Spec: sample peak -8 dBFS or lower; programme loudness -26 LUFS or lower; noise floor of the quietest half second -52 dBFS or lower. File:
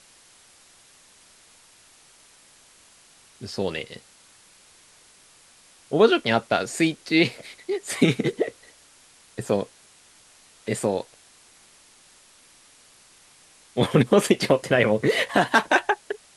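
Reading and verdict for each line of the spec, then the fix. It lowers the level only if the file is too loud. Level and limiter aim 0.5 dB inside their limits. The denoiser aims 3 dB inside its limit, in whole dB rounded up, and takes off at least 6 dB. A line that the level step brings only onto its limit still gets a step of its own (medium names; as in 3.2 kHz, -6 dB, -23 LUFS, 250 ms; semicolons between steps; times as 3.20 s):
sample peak -5.0 dBFS: fail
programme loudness -22.5 LUFS: fail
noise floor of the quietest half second -54 dBFS: pass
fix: trim -4 dB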